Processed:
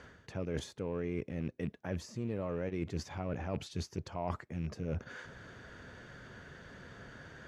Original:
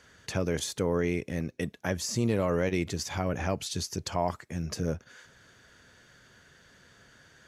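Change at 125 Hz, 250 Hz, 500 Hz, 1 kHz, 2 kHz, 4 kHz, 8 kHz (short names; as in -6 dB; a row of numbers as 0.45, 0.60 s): -6.0, -7.0, -8.5, -9.0, -9.0, -12.5, -16.5 dB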